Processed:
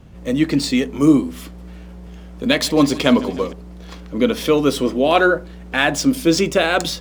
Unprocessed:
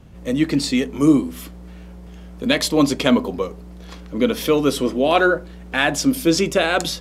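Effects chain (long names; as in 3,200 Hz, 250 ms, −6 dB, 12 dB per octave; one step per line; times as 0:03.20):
running median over 3 samples
0:01.43–0:03.53: feedback echo with a swinging delay time 152 ms, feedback 77%, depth 63 cents, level −20 dB
level +1.5 dB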